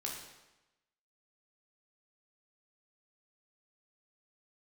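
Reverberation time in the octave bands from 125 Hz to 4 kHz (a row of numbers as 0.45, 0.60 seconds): 1.0, 1.0, 1.0, 1.0, 0.95, 0.90 seconds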